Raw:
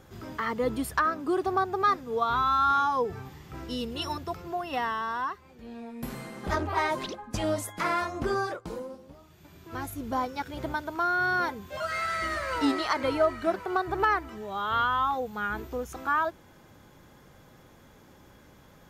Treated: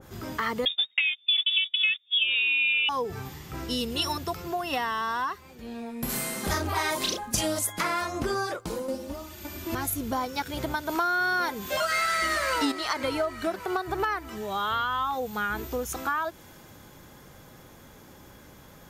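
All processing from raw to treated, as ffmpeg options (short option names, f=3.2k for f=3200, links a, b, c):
-filter_complex "[0:a]asettb=1/sr,asplit=3[a][b][c];[a]atrim=end=0.654[d];[b]atrim=start=0.65:end=2.89,asetpts=PTS-STARTPTS,afade=t=in:d=0.004:c=qsin,afade=t=out:st=2.236:d=0.004:c=qsin,agate=range=-30dB:threshold=-32dB:ratio=16:release=100:detection=peak,lowpass=f=3.2k:t=q:w=0.5098,lowpass=f=3.2k:t=q:w=0.6013,lowpass=f=3.2k:t=q:w=0.9,lowpass=f=3.2k:t=q:w=2.563,afreqshift=-3800[e];[c]atrim=start=2.886[f];[d][e]acrossfade=d=0.004:c1=hsin:c2=qsin[g];[g][f]acrossfade=d=0.004:c1=qsin:c2=hsin,asettb=1/sr,asplit=3[h][i][j];[h]atrim=end=6.094[k];[i]atrim=start=6.09:end=7.59,asetpts=PTS-STARTPTS,afade=t=in:d=0.004:c=qsin,afade=t=out:st=1.496:d=0.004:c=qsin,aemphasis=mode=production:type=cd,asplit=2[l][m];[m]adelay=35,volume=-3.5dB[n];[l][n]amix=inputs=2:normalize=0,atrim=end_sample=66150[o];[j]atrim=start=7.586[p];[k][o]acrossfade=d=0.004:c1=hsin:c2=qsin[q];[q][p]acrossfade=d=0.004:c1=qsin:c2=hsin,asettb=1/sr,asplit=3[r][s][t];[r]atrim=end=8.884[u];[s]atrim=start=8.88:end=9.75,asetpts=PTS-STARTPTS,afade=t=in:d=0.004:c=qsin,afade=t=out:st=0.866:d=0.004:c=qsin,aecho=1:1:3.4:1,atrim=end_sample=38367,acontrast=35[v];[t]atrim=start=9.746[w];[u][v]acrossfade=d=0.004:c1=hsin:c2=qsin[x];[x][w]acrossfade=d=0.004:c1=qsin:c2=hsin,asettb=1/sr,asplit=3[y][z][aa];[y]atrim=end=10.894[ab];[z]atrim=start=10.89:end=12.72,asetpts=PTS-STARTPTS,afade=t=in:d=0.004:c=qsin,afade=t=out:st=1.826:d=0.004:c=qsin,acontrast=84,equalizer=f=100:w=1.8:g=-14[ac];[aa]atrim=start=12.716[ad];[ab][ac]acrossfade=d=0.004:c1=hsin:c2=qsin[ae];[ae][ad]acrossfade=d=0.004:c1=qsin:c2=hsin,highshelf=f=6.5k:g=7.5,acompressor=threshold=-30dB:ratio=4,adynamicequalizer=threshold=0.00447:dfrequency=2000:dqfactor=0.7:tfrequency=2000:tqfactor=0.7:attack=5:release=100:ratio=0.375:range=2:mode=boostabove:tftype=highshelf,volume=4dB"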